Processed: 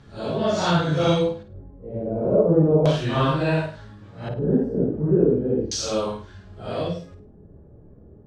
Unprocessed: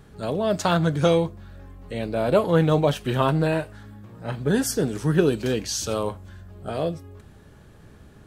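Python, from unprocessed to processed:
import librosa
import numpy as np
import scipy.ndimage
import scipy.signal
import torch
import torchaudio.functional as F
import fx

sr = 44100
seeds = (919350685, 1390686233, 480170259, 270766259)

y = fx.phase_scramble(x, sr, seeds[0], window_ms=200)
y = fx.filter_lfo_lowpass(y, sr, shape='square', hz=0.35, low_hz=480.0, high_hz=5200.0, q=1.3)
y = fx.room_flutter(y, sr, wall_m=8.9, rt60_s=0.35)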